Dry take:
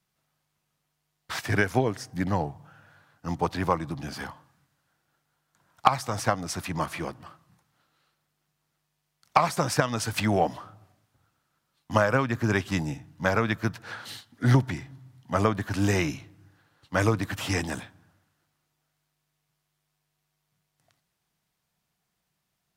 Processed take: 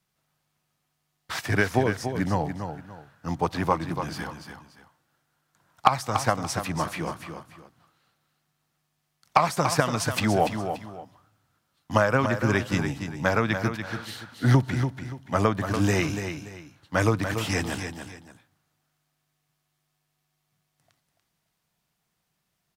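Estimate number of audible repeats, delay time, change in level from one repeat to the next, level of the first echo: 2, 288 ms, −11.0 dB, −8.0 dB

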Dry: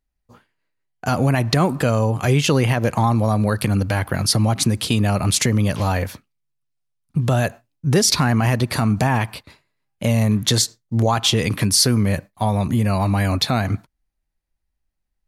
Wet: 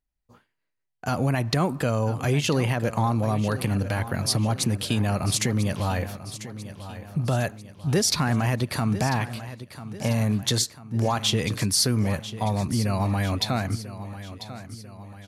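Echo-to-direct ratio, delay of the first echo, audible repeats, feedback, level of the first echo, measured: −12.5 dB, 994 ms, 4, 50%, −13.5 dB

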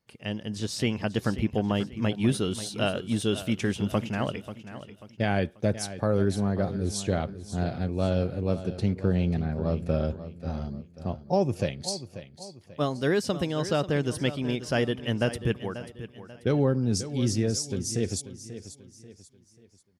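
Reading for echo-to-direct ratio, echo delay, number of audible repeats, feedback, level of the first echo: −12.5 dB, 538 ms, 3, 38%, −13.0 dB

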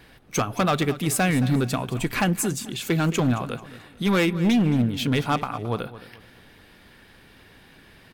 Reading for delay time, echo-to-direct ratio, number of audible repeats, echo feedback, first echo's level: 219 ms, −15.0 dB, 3, 33%, −15.5 dB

